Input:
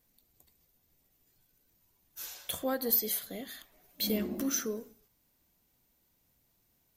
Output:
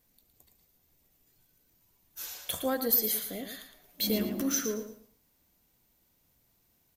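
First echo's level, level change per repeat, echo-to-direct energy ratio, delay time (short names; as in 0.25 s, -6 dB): -9.0 dB, -12.0 dB, -8.5 dB, 0.113 s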